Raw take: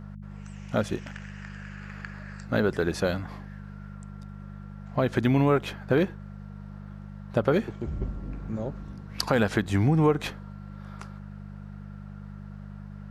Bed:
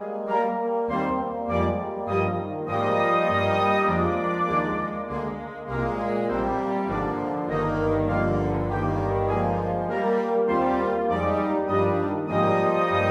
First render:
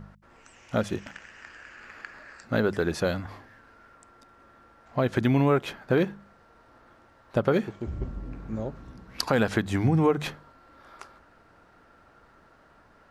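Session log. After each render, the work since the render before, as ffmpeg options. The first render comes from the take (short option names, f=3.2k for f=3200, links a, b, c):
-af "bandreject=f=50:t=h:w=4,bandreject=f=100:t=h:w=4,bandreject=f=150:t=h:w=4,bandreject=f=200:t=h:w=4"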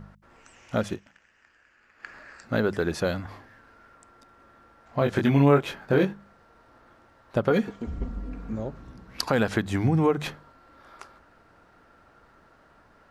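-filter_complex "[0:a]asettb=1/sr,asplit=3[a][b][c];[a]atrim=end=4.994[d];[b]atrim=start=4.99:end=6.13,asetpts=PTS-STARTPTS,afade=t=in:d=0.004:c=qsin,afade=t=out:st=1.136:d=0.004:c=qsin,asplit=2[e][f];[f]adelay=21,volume=-3.5dB[g];[e][g]amix=inputs=2:normalize=0,atrim=end_sample=50274[h];[c]atrim=start=6.126[i];[d][h]acrossfade=d=0.004:c1=hsin:c2=qsin[j];[j][i]acrossfade=d=0.004:c1=qsin:c2=hsin,asettb=1/sr,asplit=3[k][l][m];[k]atrim=end=7.504[n];[l]atrim=start=7.5:end=8.53,asetpts=PTS-STARTPTS,afade=t=in:d=0.004:c=qsin,afade=t=out:st=1.026:d=0.004:c=qsin,aecho=1:1:4.2:0.65,atrim=end_sample=45423[o];[m]atrim=start=8.526[p];[n][o]acrossfade=d=0.004:c1=hsin:c2=qsin[q];[q][p]acrossfade=d=0.004:c1=qsin:c2=hsin,asplit=3[r][s][t];[r]atrim=end=1.2,asetpts=PTS-STARTPTS,afade=t=out:st=0.93:d=0.27:c=exp:silence=0.188365[u];[s]atrim=start=1.2:end=1.78,asetpts=PTS-STARTPTS,volume=-14.5dB[v];[t]atrim=start=1.78,asetpts=PTS-STARTPTS,afade=t=in:d=0.27:c=exp:silence=0.188365[w];[u][v][w]concat=n=3:v=0:a=1"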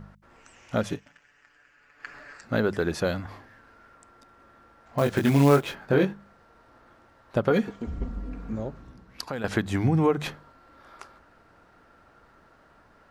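-filter_complex "[0:a]asettb=1/sr,asplit=3[a][b][c];[a]atrim=end=0.854[d];[b]atrim=start=0.85:end=2.41,asetpts=PTS-STARTPTS,afade=t=in:d=0.004:c=qsin,afade=t=out:st=1.556:d=0.004:c=qsin,aecho=1:1:6.9:0.65,atrim=end_sample=68796[e];[c]atrim=start=2.406[f];[d][e]acrossfade=d=0.004:c1=hsin:c2=qsin[g];[g][f]acrossfade=d=0.004:c1=qsin:c2=hsin,asettb=1/sr,asplit=3[h][i][j];[h]atrim=end=4.984[k];[i]atrim=start=4.98:end=5.75,asetpts=PTS-STARTPTS,afade=t=in:d=0.004:c=qsin,afade=t=out:st=0.766:d=0.004:c=qsin,acrusher=bits=5:mode=log:mix=0:aa=0.000001[l];[j]atrim=start=5.746[m];[k][l]acrossfade=d=0.004:c1=hsin:c2=qsin[n];[n][m]acrossfade=d=0.004:c1=qsin:c2=hsin,asplit=2[o][p];[o]atrim=end=9.44,asetpts=PTS-STARTPTS,afade=t=out:st=8.61:d=0.83:silence=0.237137[q];[p]atrim=start=9.44,asetpts=PTS-STARTPTS,afade=t=in:d=0.004:c=hsin:silence=0.237137[r];[q][r]concat=n=2:v=0:a=1"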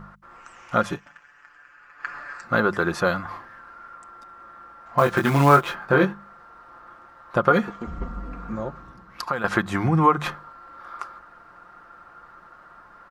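-af "equalizer=f=1.2k:t=o:w=0.97:g=14,aecho=1:1:5.7:0.39"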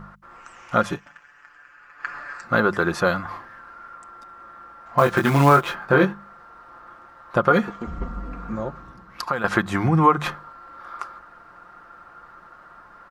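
-af "volume=1.5dB,alimiter=limit=-3dB:level=0:latency=1"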